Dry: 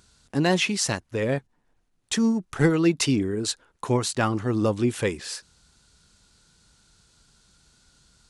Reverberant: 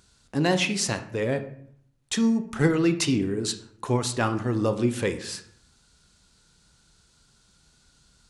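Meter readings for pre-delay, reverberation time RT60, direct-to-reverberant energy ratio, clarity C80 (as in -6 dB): 25 ms, 0.65 s, 9.0 dB, 15.0 dB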